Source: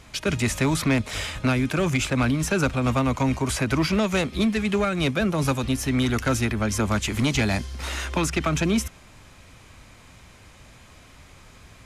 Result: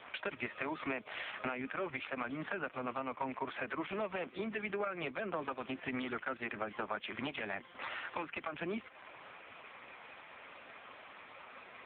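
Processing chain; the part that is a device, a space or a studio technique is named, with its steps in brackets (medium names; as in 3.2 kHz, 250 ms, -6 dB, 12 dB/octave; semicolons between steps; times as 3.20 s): voicemail (band-pass 450–2900 Hz; compression 8:1, threshold -41 dBFS, peak gain reduction 19.5 dB; trim +7 dB; AMR-NB 4.75 kbps 8 kHz)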